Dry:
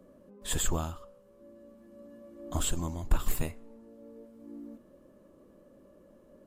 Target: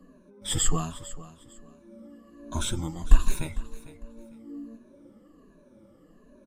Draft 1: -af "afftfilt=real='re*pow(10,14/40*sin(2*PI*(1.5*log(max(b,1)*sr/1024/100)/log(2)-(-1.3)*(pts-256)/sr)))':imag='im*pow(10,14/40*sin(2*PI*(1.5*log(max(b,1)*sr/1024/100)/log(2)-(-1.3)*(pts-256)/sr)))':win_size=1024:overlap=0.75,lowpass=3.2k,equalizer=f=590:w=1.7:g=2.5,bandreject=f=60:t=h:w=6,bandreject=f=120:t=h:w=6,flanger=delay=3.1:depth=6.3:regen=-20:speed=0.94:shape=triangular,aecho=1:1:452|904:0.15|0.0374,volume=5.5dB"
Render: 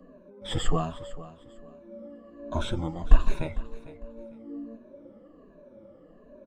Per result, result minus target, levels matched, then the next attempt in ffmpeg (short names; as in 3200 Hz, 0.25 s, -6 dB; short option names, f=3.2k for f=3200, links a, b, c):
8000 Hz band -14.5 dB; 500 Hz band +7.5 dB
-af "afftfilt=real='re*pow(10,14/40*sin(2*PI*(1.5*log(max(b,1)*sr/1024/100)/log(2)-(-1.3)*(pts-256)/sr)))':imag='im*pow(10,14/40*sin(2*PI*(1.5*log(max(b,1)*sr/1024/100)/log(2)-(-1.3)*(pts-256)/sr)))':win_size=1024:overlap=0.75,lowpass=10k,equalizer=f=590:w=1.7:g=2.5,bandreject=f=60:t=h:w=6,bandreject=f=120:t=h:w=6,flanger=delay=3.1:depth=6.3:regen=-20:speed=0.94:shape=triangular,aecho=1:1:452|904:0.15|0.0374,volume=5.5dB"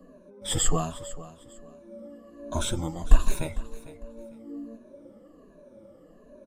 500 Hz band +6.0 dB
-af "afftfilt=real='re*pow(10,14/40*sin(2*PI*(1.5*log(max(b,1)*sr/1024/100)/log(2)-(-1.3)*(pts-256)/sr)))':imag='im*pow(10,14/40*sin(2*PI*(1.5*log(max(b,1)*sr/1024/100)/log(2)-(-1.3)*(pts-256)/sr)))':win_size=1024:overlap=0.75,lowpass=10k,equalizer=f=590:w=1.7:g=-7,bandreject=f=60:t=h:w=6,bandreject=f=120:t=h:w=6,flanger=delay=3.1:depth=6.3:regen=-20:speed=0.94:shape=triangular,aecho=1:1:452|904:0.15|0.0374,volume=5.5dB"